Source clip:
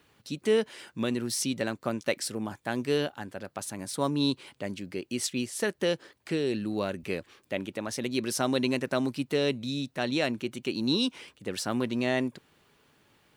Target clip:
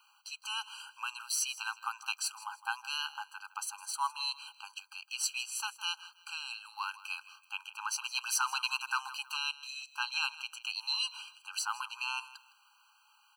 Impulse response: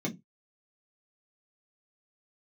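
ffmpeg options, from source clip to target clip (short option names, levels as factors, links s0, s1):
-filter_complex "[0:a]aecho=1:1:160|320:0.133|0.036,asettb=1/sr,asplit=3[s0][s1][s2];[s0]atrim=end=7.784[s3];[s1]atrim=start=7.78:end=9.37,asetpts=PTS-STARTPTS,afade=t=in:d=0.004:c=qsin,afade=t=out:st=1.586:d=0.004:c=qsin,aeval=exprs='0.237*(cos(1*acos(clip(val(0)/0.237,-1,1)))-cos(1*PI/2))+0.0211*(cos(5*acos(clip(val(0)/0.237,-1,1)))-cos(5*PI/2))':c=same[s4];[s2]atrim=start=9.366[s5];[s3][s4]acrossfade=d=0.004:c1=hsin:c2=qsin[s6];[s6][s5]acrossfade=d=0.004:c1=qsin:c2=hsin,afftfilt=real='re*eq(mod(floor(b*sr/1024/800),2),1)':imag='im*eq(mod(floor(b*sr/1024/800),2),1)':win_size=1024:overlap=0.75,volume=1.33"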